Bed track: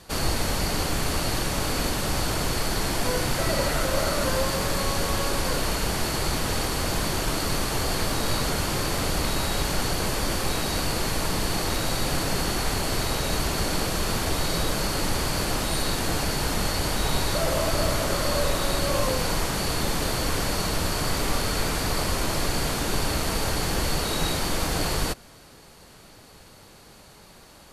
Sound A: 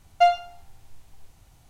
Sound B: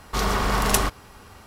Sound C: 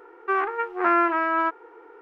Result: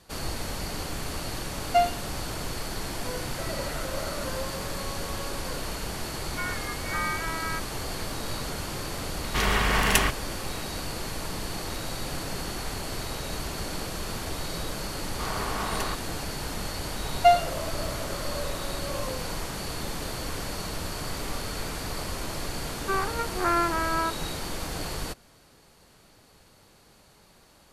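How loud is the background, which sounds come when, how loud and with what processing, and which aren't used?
bed track -7.5 dB
1.54 s: add A -4 dB
6.09 s: add C -10.5 dB + frequency inversion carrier 2.6 kHz
9.21 s: add B -3 dB + high-order bell 2.3 kHz +8 dB 1.2 oct
15.06 s: add B -9.5 dB + overdrive pedal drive 8 dB, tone 1.9 kHz, clips at -1 dBFS
17.04 s: add A
22.60 s: add C -4.5 dB

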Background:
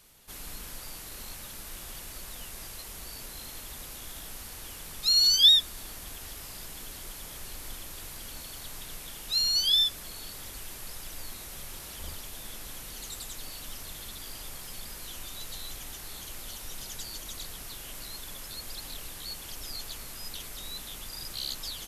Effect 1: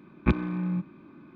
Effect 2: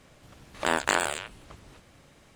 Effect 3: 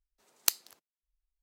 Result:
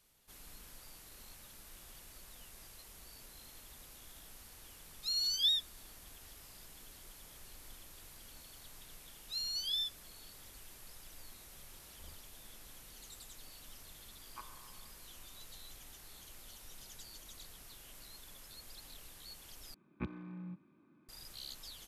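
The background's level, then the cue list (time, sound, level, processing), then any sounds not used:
background -12.5 dB
14.10 s: add 1 -10.5 dB + ladder band-pass 1.1 kHz, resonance 70%
19.74 s: replace with 1 -17 dB + high-pass 73 Hz
not used: 2, 3

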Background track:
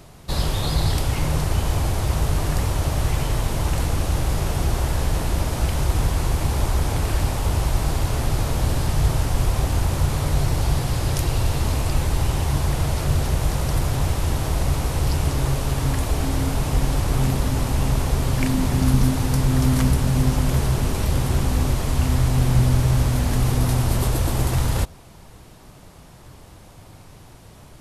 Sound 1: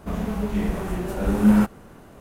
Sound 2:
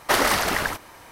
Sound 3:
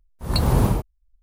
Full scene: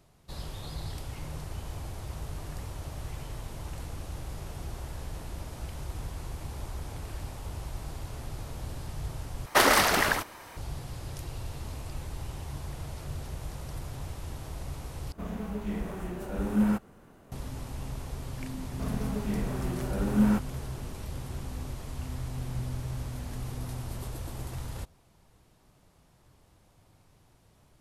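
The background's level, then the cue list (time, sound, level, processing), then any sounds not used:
background track -17 dB
9.46 s: replace with 2 -1 dB
15.12 s: replace with 1 -9 dB
18.73 s: add 1 -7.5 dB
not used: 3

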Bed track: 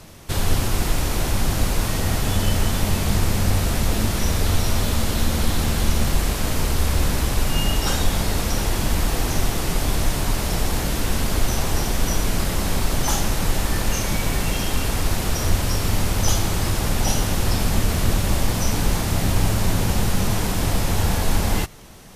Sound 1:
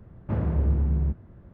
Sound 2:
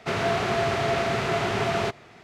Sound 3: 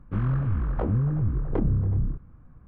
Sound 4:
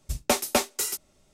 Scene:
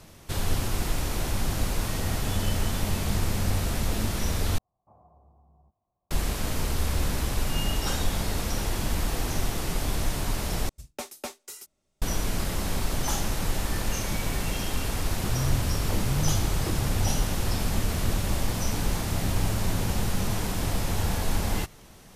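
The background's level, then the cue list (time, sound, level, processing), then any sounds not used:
bed track -6.5 dB
4.58 s: replace with 1 -9.5 dB + cascade formant filter a
10.69 s: replace with 4 -13.5 dB
15.11 s: add 3 -0.5 dB + peak limiter -23.5 dBFS
not used: 2

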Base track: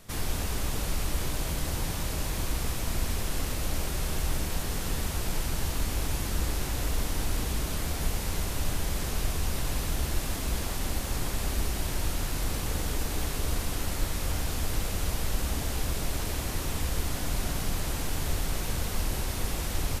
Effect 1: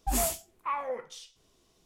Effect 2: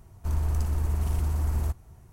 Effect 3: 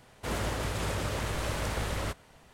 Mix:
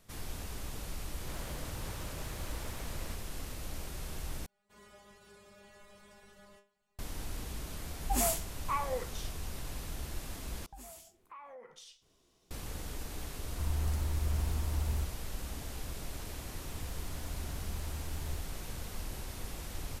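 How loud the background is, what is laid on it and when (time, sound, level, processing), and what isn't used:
base track -11 dB
1.03 s: add 3 -14 dB
4.46 s: replace with 3 -10.5 dB + inharmonic resonator 200 Hz, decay 0.36 s, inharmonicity 0.002
8.03 s: add 1 -2 dB
10.66 s: replace with 1 -3.5 dB + compression 5:1, threshold -45 dBFS
13.33 s: add 2 -7 dB
16.69 s: add 2 -16.5 dB + swell ahead of each attack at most 42 dB/s

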